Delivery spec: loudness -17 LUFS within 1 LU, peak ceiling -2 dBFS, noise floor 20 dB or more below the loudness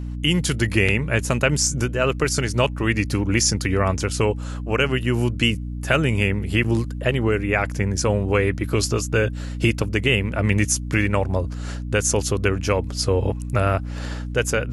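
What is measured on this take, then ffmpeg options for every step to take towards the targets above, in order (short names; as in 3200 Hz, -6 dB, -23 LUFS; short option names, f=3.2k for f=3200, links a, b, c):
hum 60 Hz; harmonics up to 300 Hz; hum level -27 dBFS; loudness -21.5 LUFS; peak -3.5 dBFS; loudness target -17.0 LUFS
-> -af "bandreject=f=60:t=h:w=4,bandreject=f=120:t=h:w=4,bandreject=f=180:t=h:w=4,bandreject=f=240:t=h:w=4,bandreject=f=300:t=h:w=4"
-af "volume=4.5dB,alimiter=limit=-2dB:level=0:latency=1"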